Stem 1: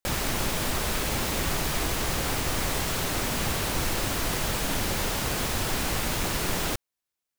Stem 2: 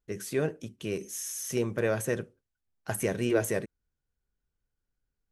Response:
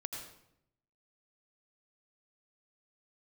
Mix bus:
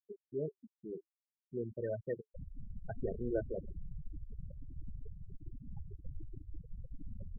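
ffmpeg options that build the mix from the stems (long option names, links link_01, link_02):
-filter_complex "[0:a]adelay=2300,volume=-9.5dB,asplit=2[link_01][link_02];[link_02]volume=-12dB[link_03];[1:a]volume=-4.5dB[link_04];[2:a]atrim=start_sample=2205[link_05];[link_03][link_05]afir=irnorm=-1:irlink=0[link_06];[link_01][link_04][link_06]amix=inputs=3:normalize=0,afftfilt=real='re*gte(hypot(re,im),0.0708)':imag='im*gte(hypot(re,im),0.0708)':win_size=1024:overlap=0.75,flanger=delay=1.2:depth=2.2:regen=80:speed=0.55:shape=triangular"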